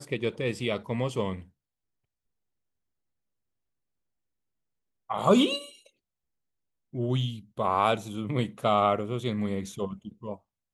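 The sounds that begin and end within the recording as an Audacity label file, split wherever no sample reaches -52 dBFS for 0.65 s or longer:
5.090000	5.890000	sound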